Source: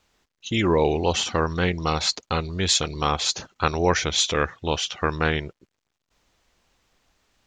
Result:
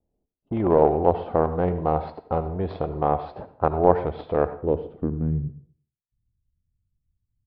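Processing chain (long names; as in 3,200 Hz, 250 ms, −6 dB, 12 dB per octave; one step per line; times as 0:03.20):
noise gate with hold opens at −59 dBFS
low-pass that shuts in the quiet parts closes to 330 Hz, open at −21.5 dBFS
in parallel at −7.5 dB: log-companded quantiser 2 bits
on the sum: low-pass filter sweep 700 Hz → 110 Hz, 0:04.43–0:05.66
on a send at −12 dB: convolution reverb RT60 0.50 s, pre-delay 63 ms
on the sum: downsampling to 11,025 Hz
level −4.5 dB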